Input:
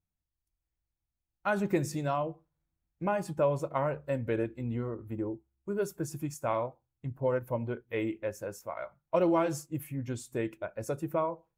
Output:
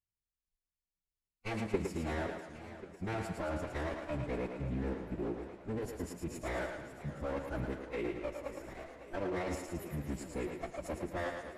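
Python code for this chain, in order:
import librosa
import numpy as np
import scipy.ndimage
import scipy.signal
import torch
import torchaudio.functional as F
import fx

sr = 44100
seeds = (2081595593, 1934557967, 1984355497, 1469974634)

p1 = fx.lower_of_two(x, sr, delay_ms=0.41)
p2 = fx.level_steps(p1, sr, step_db=12)
p3 = fx.pitch_keep_formants(p2, sr, semitones=-10.5)
p4 = p3 + fx.echo_thinned(p3, sr, ms=110, feedback_pct=53, hz=280.0, wet_db=-5, dry=0)
y = fx.echo_warbled(p4, sr, ms=544, feedback_pct=69, rate_hz=2.8, cents=175, wet_db=-14.0)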